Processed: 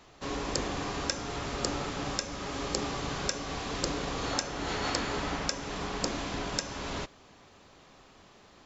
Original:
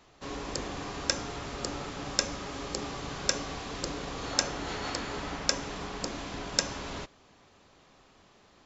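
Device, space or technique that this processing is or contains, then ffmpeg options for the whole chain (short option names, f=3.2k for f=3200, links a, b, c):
stacked limiters: -af "alimiter=limit=-7.5dB:level=0:latency=1:release=456,alimiter=limit=-13dB:level=0:latency=1:release=247,volume=3.5dB"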